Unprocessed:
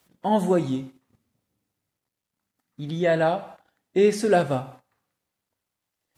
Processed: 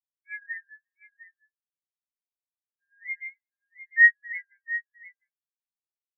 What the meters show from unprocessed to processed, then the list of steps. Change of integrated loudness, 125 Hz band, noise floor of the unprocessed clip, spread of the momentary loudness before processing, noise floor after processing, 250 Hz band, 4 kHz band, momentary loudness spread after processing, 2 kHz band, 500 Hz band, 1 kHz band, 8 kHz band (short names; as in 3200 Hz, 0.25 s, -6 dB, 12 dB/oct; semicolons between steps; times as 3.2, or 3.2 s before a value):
-0.5 dB, under -40 dB, -85 dBFS, 11 LU, under -85 dBFS, under -40 dB, under -40 dB, 23 LU, +12.5 dB, under -40 dB, under -40 dB, under -35 dB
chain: four-band scrambler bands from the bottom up 4123; delay with a stepping band-pass 0.352 s, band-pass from 870 Hz, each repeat 1.4 oct, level 0 dB; spectral expander 4:1